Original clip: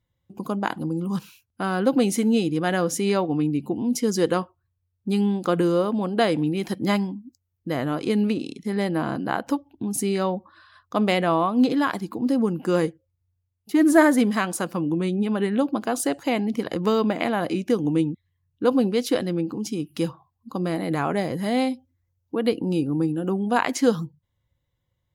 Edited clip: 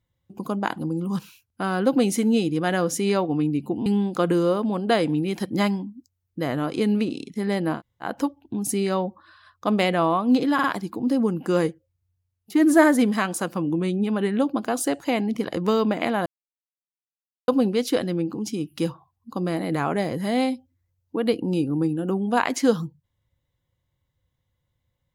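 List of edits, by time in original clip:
3.86–5.15 s: delete
9.06–9.34 s: room tone, crossfade 0.10 s
11.83 s: stutter 0.05 s, 3 plays
17.45–18.67 s: mute

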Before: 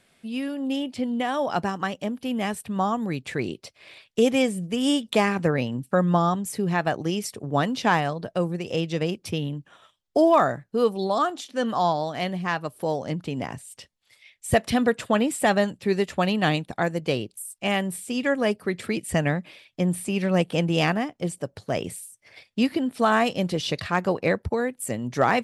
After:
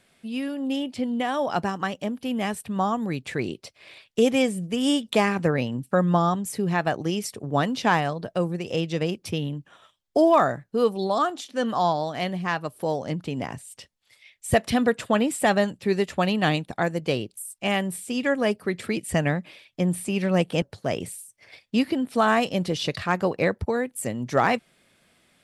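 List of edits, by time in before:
20.62–21.46 s: delete

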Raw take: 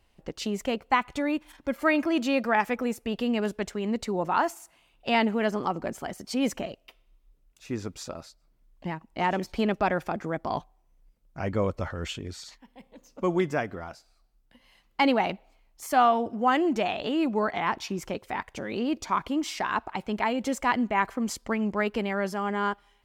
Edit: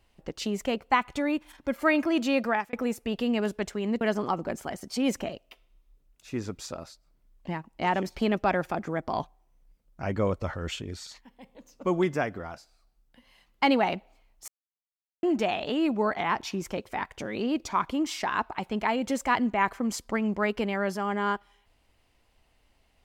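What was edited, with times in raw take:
2.47–2.73 s: fade out
4.01–5.38 s: delete
15.85–16.60 s: mute

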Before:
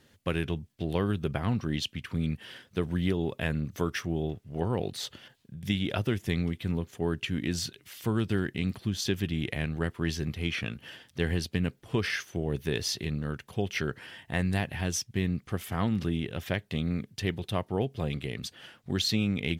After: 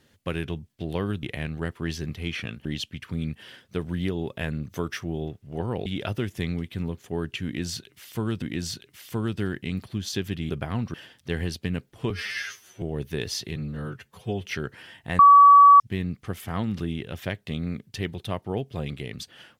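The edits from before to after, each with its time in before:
1.23–1.67 s: swap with 9.42–10.84 s
4.88–5.75 s: delete
7.34–8.31 s: loop, 2 plays
12.00–12.36 s: stretch 2×
13.10–13.70 s: stretch 1.5×
14.43–15.04 s: bleep 1.14 kHz -8.5 dBFS

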